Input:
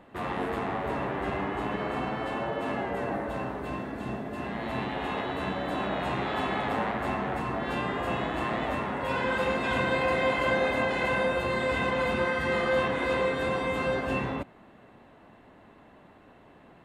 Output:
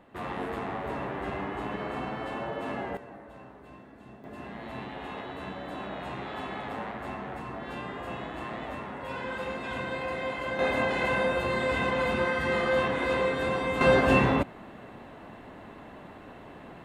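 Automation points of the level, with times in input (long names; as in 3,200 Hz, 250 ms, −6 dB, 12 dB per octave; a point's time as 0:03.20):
−3 dB
from 0:02.97 −15 dB
from 0:04.24 −7 dB
from 0:10.59 0 dB
from 0:13.81 +8 dB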